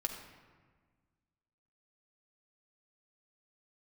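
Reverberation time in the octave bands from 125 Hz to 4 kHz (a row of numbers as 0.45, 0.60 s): 2.0, 2.0, 1.5, 1.5, 1.3, 0.90 s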